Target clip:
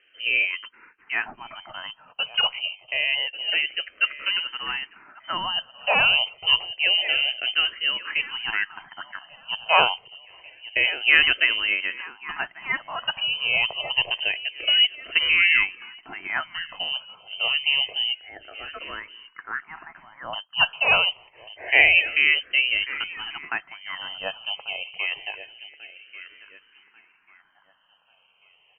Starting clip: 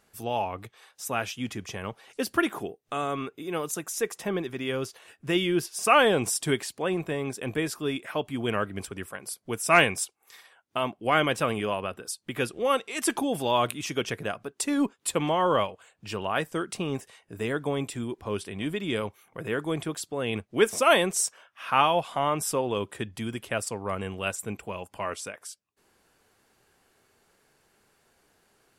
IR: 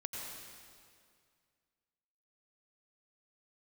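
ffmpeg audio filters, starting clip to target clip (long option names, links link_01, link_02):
-filter_complex "[0:a]asettb=1/sr,asplit=3[link_01][link_02][link_03];[link_01]atrim=end=18.204[link_04];[link_02]atrim=start=18.2:end=20.33,asetpts=PTS-STARTPTS,afade=type=in:duration=0.004:curve=qsin,afade=type=out:start_time=2.126:duration=0.004:curve=qsin,highpass=frequency=1400:width=0.5412,highpass=frequency=1400:width=1.3066[link_05];[link_03]atrim=start=20.326[link_06];[link_04][link_05]acrossfade=duration=0.004:curve1=hsin:curve2=qsin[link_07];[link_07][link_06]acrossfade=duration=0.004:curve1=qsin:curve2=hsin,aecho=1:1:1141|2282|3423|4564:0.141|0.0593|0.0249|0.0105,lowpass=frequency=2700:width_type=q:width=0.5098,lowpass=frequency=2700:width_type=q:width=0.6013,lowpass=frequency=2700:width_type=q:width=0.9,lowpass=frequency=2700:width_type=q:width=2.563,afreqshift=-3200,asplit=2[link_08][link_09];[link_09]afreqshift=-0.27[link_10];[link_08][link_10]amix=inputs=2:normalize=1,volume=7dB"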